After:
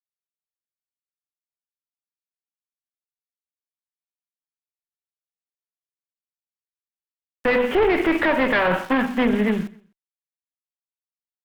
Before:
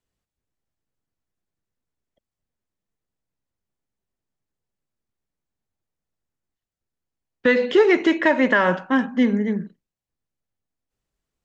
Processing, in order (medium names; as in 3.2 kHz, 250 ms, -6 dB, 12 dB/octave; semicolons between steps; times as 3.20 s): CVSD coder 16 kbps; bass shelf 280 Hz -7 dB; hum notches 50/100/150/200/250/300/350 Hz; small samples zeroed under -44.5 dBFS; Chebyshev shaper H 4 -13 dB, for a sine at -6 dBFS; on a send: feedback delay 127 ms, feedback 29%, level -22 dB; on the sum: loudness maximiser +16 dB; trim -8.5 dB